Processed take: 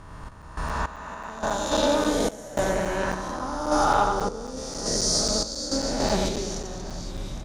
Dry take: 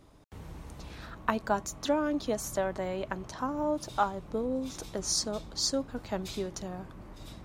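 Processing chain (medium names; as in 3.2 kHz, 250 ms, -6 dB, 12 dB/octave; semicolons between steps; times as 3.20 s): reverse spectral sustain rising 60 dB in 2.52 s; low-pass 10 kHz 12 dB/octave; bass shelf 63 Hz +10.5 dB; reverse bouncing-ball echo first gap 90 ms, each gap 1.6×, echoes 5; random-step tremolo, depth 90%; in parallel at -6 dB: hard clipper -19.5 dBFS, distortion -22 dB; on the sum: crackling interface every 0.27 s, samples 256, zero, from 0.42 s; trim +1 dB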